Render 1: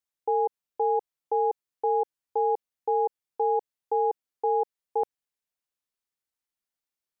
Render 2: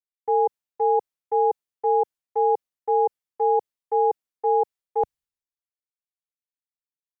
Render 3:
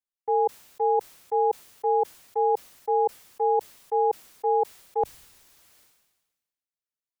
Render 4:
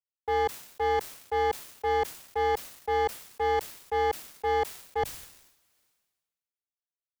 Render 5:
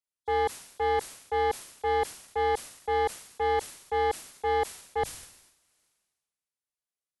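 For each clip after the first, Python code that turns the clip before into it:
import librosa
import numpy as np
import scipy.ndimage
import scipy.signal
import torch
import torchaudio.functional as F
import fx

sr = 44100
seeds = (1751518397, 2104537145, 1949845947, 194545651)

y1 = fx.band_widen(x, sr, depth_pct=100)
y1 = y1 * 10.0 ** (4.5 / 20.0)
y2 = fx.sustainer(y1, sr, db_per_s=47.0)
y2 = y2 * 10.0 ** (-2.5 / 20.0)
y3 = fx.leveller(y2, sr, passes=2)
y3 = fx.transient(y3, sr, attack_db=-2, sustain_db=7)
y3 = fx.leveller(y3, sr, passes=1)
y3 = y3 * 10.0 ** (-7.5 / 20.0)
y4 = fx.freq_compress(y3, sr, knee_hz=3300.0, ratio=1.5)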